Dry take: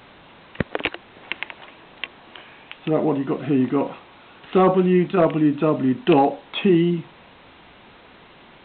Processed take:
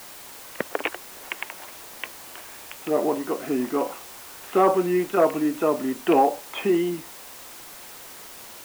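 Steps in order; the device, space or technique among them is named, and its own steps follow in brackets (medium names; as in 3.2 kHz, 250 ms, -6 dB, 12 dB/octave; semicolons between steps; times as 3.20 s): wax cylinder (band-pass 380–2200 Hz; wow and flutter; white noise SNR 17 dB)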